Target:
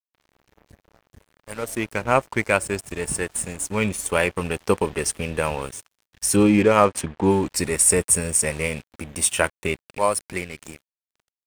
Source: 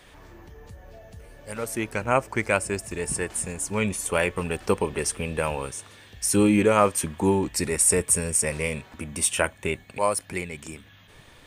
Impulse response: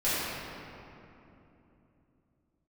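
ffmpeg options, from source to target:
-filter_complex "[0:a]aeval=exprs='sgn(val(0))*max(abs(val(0))-0.00944,0)':c=same,asettb=1/sr,asplit=3[a][b][c];[a]atrim=end=6.364[d];[b]atrim=start=6.36:end=7.3,asetpts=PTS-STARTPTS,afade=t=in:d=0.004:c=qsin,afade=t=out:st=0.936:d=0.004:c=qsin,adynamicsmooth=sensitivity=4:basefreq=3.4k[e];[c]atrim=start=7.296[f];[d][e]acrossfade=d=0.004:c1=hsin:c2=qsin[g];[g][f]acrossfade=d=0.004:c1=qsin:c2=hsin,volume=3.5dB"

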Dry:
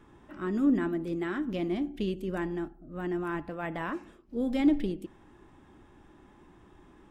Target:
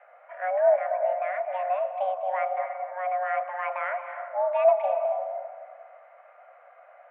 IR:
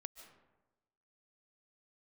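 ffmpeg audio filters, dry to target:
-filter_complex "[0:a]asplit=3[a][b][c];[a]afade=t=out:st=0.75:d=0.02[d];[b]acompressor=threshold=-32dB:ratio=3,afade=t=in:st=0.75:d=0.02,afade=t=out:st=1.67:d=0.02[e];[c]afade=t=in:st=1.67:d=0.02[f];[d][e][f]amix=inputs=3:normalize=0[g];[1:a]atrim=start_sample=2205,asetrate=26460,aresample=44100[h];[g][h]afir=irnorm=-1:irlink=0,highpass=f=160:t=q:w=0.5412,highpass=f=160:t=q:w=1.307,lowpass=f=2.1k:t=q:w=0.5176,lowpass=f=2.1k:t=q:w=0.7071,lowpass=f=2.1k:t=q:w=1.932,afreqshift=370,volume=7dB"

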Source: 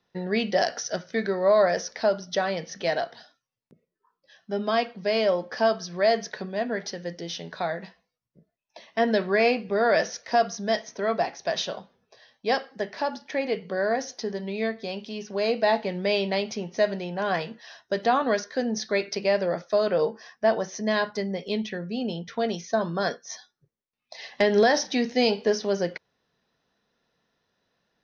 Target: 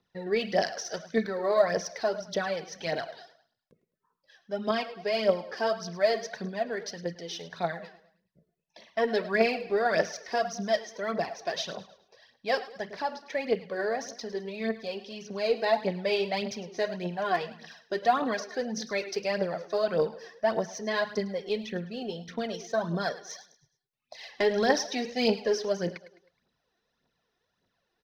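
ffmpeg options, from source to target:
-af "aecho=1:1:105|210|315|420:0.168|0.0688|0.0282|0.0116,aphaser=in_gain=1:out_gain=1:delay=2.9:decay=0.59:speed=1.7:type=triangular,volume=-5.5dB"

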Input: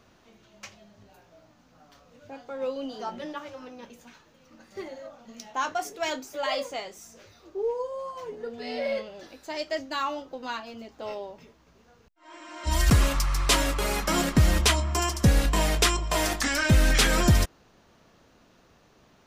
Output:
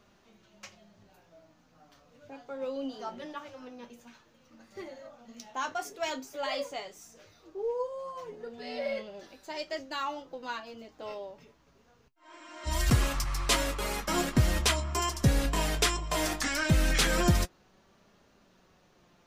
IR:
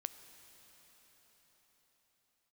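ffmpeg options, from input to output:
-filter_complex "[0:a]asettb=1/sr,asplit=3[a][b][c];[a]atrim=end=13.244[d];[b]atrim=start=13.24:end=14.33,asetpts=PTS-STARTPTS,afade=t=in:d=0.004:c=qsin,afade=t=out:st=1.086:d=0.004:c=qsin,agate=range=-33dB:threshold=-25dB:ratio=3:detection=peak[e];[c]atrim=start=14.326[f];[d][e]acrossfade=d=0.004:c1=hsin:c2=qsin[g];[g][f]acrossfade=d=0.004:c1=qsin:c2=hsin,flanger=delay=4.9:depth=4:regen=59:speed=0.11:shape=triangular"

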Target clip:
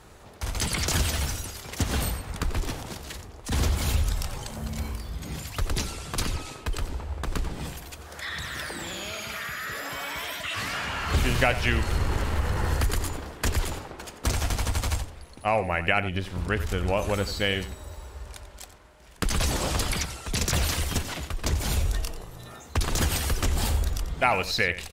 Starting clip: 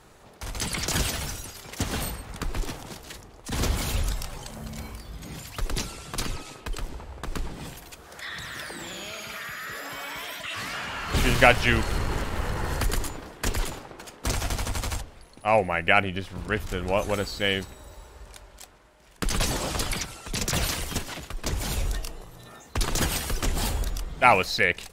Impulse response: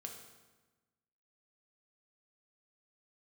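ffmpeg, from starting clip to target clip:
-filter_complex "[0:a]equalizer=f=74:w=2.1:g=8.5,acompressor=threshold=-24dB:ratio=2.5,asplit=2[a][b];[b]aecho=0:1:90:0.211[c];[a][c]amix=inputs=2:normalize=0,volume=2dB"

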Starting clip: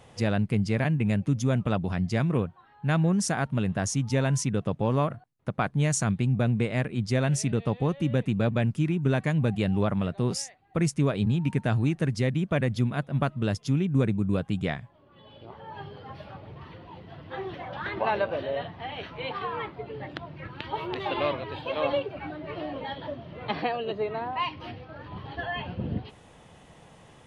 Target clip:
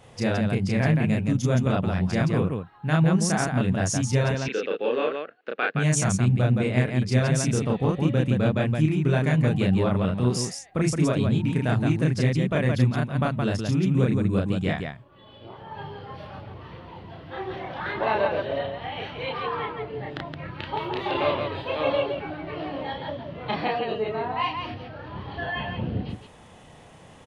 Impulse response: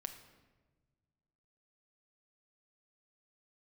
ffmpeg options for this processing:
-filter_complex "[0:a]asettb=1/sr,asplit=3[a][b][c];[a]atrim=end=4.314[d];[b]atrim=start=4.31:end=5.75,asetpts=PTS-STARTPTS,afade=t=in:d=0.004:c=qsin,afade=t=out:st=1.436:d=0.004:c=qsin,highpass=f=330:w=0.5412,highpass=f=330:w=1.3066,equalizer=f=460:t=q:w=4:g=7,equalizer=f=690:t=q:w=4:g=-6,equalizer=f=990:t=q:w=4:g=-10,equalizer=f=1.6k:t=q:w=4:g=8,equalizer=f=2.7k:t=q:w=4:g=9,equalizer=f=4k:t=q:w=4:g=4,lowpass=f=4.6k:w=0.5412,lowpass=f=4.6k:w=1.3066[e];[c]atrim=start=5.746[f];[d][e]acrossfade=d=0.004:c1=hsin:c2=qsin[g];[g][f]acrossfade=d=0.004:c1=qsin:c2=hsin,aecho=1:1:32.07|169.1:0.891|0.631"

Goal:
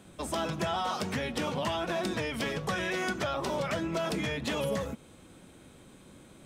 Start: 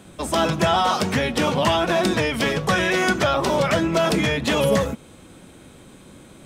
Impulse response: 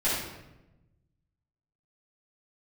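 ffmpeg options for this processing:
-af "acompressor=threshold=-23dB:ratio=2,volume=-8dB"

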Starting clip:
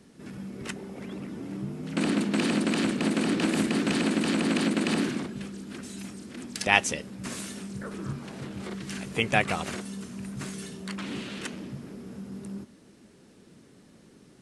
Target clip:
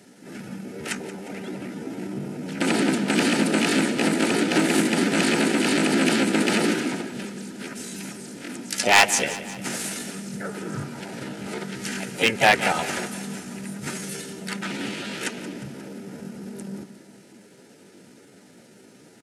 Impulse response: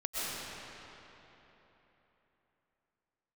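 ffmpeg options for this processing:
-filter_complex "[0:a]highpass=110,asplit=4[a][b][c][d];[b]asetrate=35002,aresample=44100,atempo=1.25992,volume=-11dB[e];[c]asetrate=37084,aresample=44100,atempo=1.18921,volume=-17dB[f];[d]asetrate=52444,aresample=44100,atempo=0.840896,volume=-8dB[g];[a][e][f][g]amix=inputs=4:normalize=0,equalizer=f=3.6k:t=o:w=0.8:g=-3.5,atempo=0.75,asuperstop=centerf=1100:order=12:qfactor=5.9,aeval=exprs='0.211*(abs(mod(val(0)/0.211+3,4)-2)-1)':c=same,lowshelf=f=260:g=-10,aecho=1:1:178|356|534|712|890|1068:0.178|0.101|0.0578|0.0329|0.0188|0.0107,volume=8dB"

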